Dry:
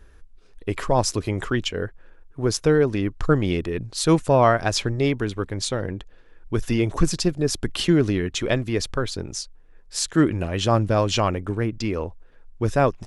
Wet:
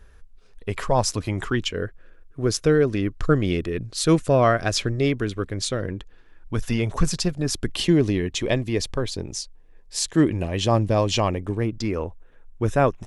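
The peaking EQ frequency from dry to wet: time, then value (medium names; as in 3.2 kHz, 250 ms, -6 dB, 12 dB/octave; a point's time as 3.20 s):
peaking EQ -11.5 dB 0.28 oct
1.06 s 320 Hz
1.84 s 880 Hz
5.78 s 880 Hz
6.69 s 320 Hz
7.36 s 320 Hz
7.77 s 1.4 kHz
11.60 s 1.4 kHz
12.02 s 4.7 kHz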